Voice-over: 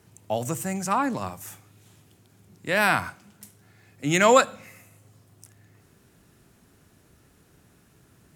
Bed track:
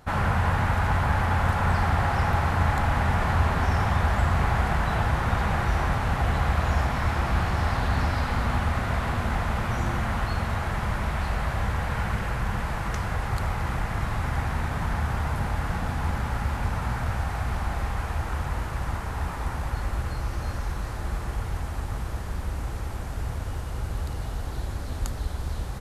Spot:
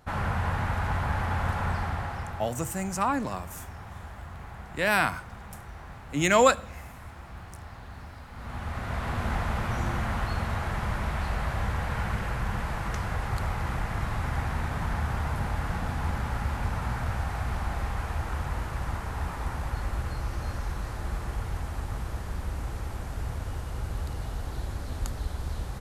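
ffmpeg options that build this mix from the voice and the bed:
-filter_complex "[0:a]adelay=2100,volume=0.75[s0];[1:a]volume=3.76,afade=t=out:st=1.58:d=0.95:silence=0.199526,afade=t=in:st=8.32:d=0.96:silence=0.149624[s1];[s0][s1]amix=inputs=2:normalize=0"

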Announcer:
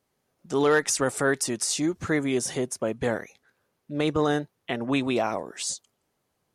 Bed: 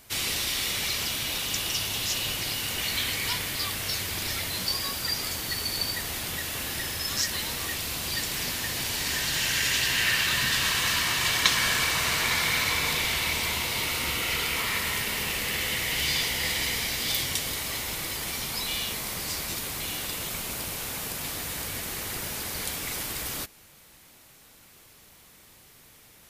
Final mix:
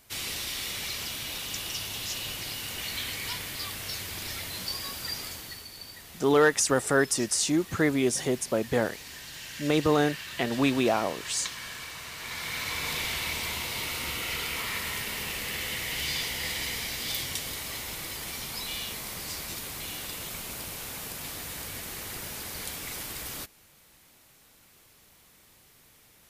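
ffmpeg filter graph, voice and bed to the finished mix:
-filter_complex "[0:a]adelay=5700,volume=1.06[s0];[1:a]volume=1.78,afade=t=out:st=5.17:d=0.51:silence=0.334965,afade=t=in:st=12.15:d=0.83:silence=0.298538[s1];[s0][s1]amix=inputs=2:normalize=0"

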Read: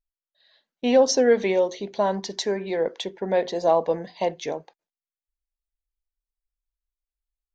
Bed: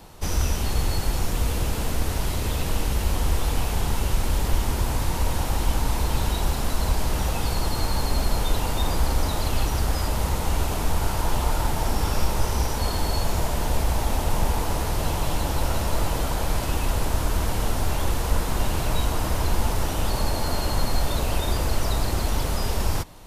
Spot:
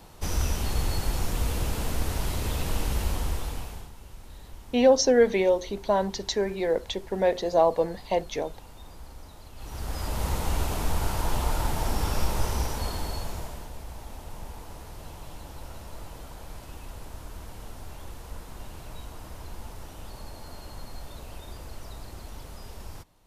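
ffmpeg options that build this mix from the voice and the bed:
-filter_complex "[0:a]adelay=3900,volume=0.891[s0];[1:a]volume=5.96,afade=t=out:st=2.99:d=0.92:silence=0.112202,afade=t=in:st=9.56:d=0.75:silence=0.112202,afade=t=out:st=12.46:d=1.25:silence=0.199526[s1];[s0][s1]amix=inputs=2:normalize=0"

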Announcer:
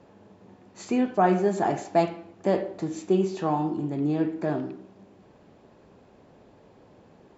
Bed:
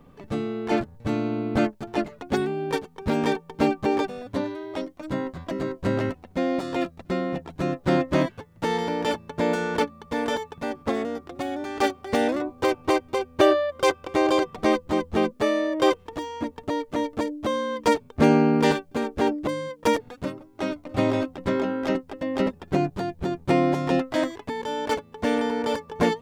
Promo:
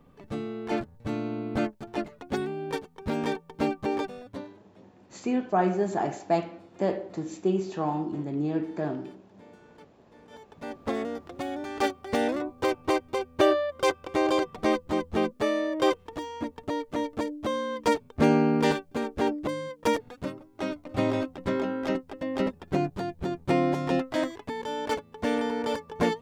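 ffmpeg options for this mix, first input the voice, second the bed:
-filter_complex "[0:a]adelay=4350,volume=0.708[s0];[1:a]volume=10.6,afade=t=out:st=4.14:d=0.48:silence=0.0630957,afade=t=in:st=10.29:d=0.67:silence=0.0501187[s1];[s0][s1]amix=inputs=2:normalize=0"

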